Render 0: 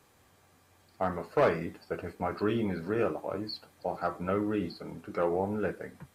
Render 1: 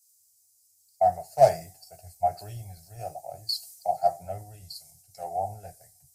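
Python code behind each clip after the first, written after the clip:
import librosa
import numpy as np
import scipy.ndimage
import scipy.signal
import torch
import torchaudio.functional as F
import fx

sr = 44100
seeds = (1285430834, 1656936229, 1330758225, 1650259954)

y = fx.curve_eq(x, sr, hz=(140.0, 230.0, 490.0, 720.0, 1100.0, 1800.0, 3500.0, 5000.0, 8100.0), db=(0, -27, -17, 11, -28, -13, -12, 10, 15))
y = fx.band_widen(y, sr, depth_pct=100)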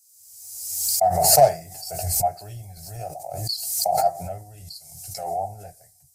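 y = fx.pre_swell(x, sr, db_per_s=42.0)
y = F.gain(torch.from_numpy(y), 1.5).numpy()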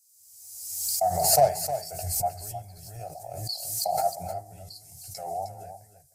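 y = x + 10.0 ** (-10.5 / 20.0) * np.pad(x, (int(310 * sr / 1000.0), 0))[:len(x)]
y = F.gain(torch.from_numpy(y), -5.5).numpy()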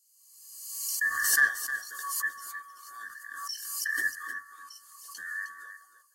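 y = fx.band_swap(x, sr, width_hz=1000)
y = F.gain(torch.from_numpy(y), -4.0).numpy()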